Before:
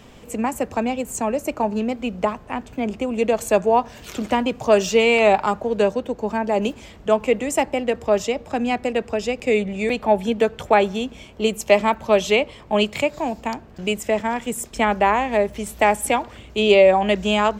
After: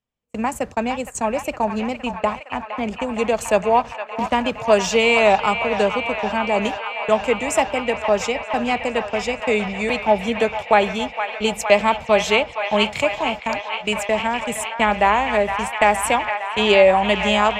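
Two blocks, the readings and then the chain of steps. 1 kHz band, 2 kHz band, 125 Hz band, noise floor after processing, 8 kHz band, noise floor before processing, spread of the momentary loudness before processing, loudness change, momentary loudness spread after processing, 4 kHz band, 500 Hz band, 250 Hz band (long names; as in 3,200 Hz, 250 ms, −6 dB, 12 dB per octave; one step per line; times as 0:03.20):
+2.5 dB, +4.0 dB, −0.5 dB, −38 dBFS, +1.0 dB, −44 dBFS, 10 LU, +1.0 dB, 9 LU, +3.5 dB, −0.5 dB, −1.5 dB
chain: low-pass filter 11,000 Hz 12 dB per octave
noise gate −29 dBFS, range −42 dB
parametric band 330 Hz −6 dB 1.4 octaves
on a send: delay with a band-pass on its return 463 ms, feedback 83%, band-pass 1,600 Hz, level −7 dB
on the sum: level +2.5 dB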